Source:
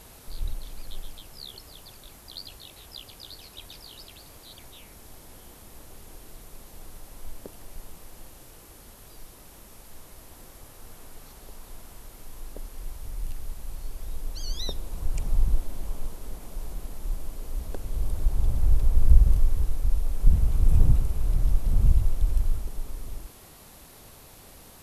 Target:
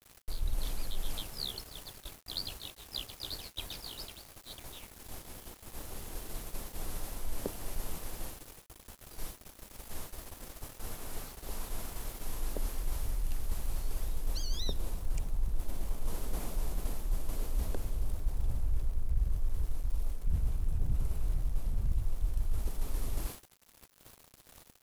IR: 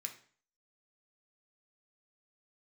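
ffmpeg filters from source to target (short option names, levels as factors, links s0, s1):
-filter_complex "[0:a]acrossover=split=350[s0][s1];[s1]acompressor=threshold=0.0126:ratio=3[s2];[s0][s2]amix=inputs=2:normalize=0,agate=range=0.0224:threshold=0.01:ratio=3:detection=peak,areverse,acompressor=threshold=0.0224:ratio=6,areverse,aeval=exprs='val(0)*gte(abs(val(0)),0.002)':c=same,volume=2"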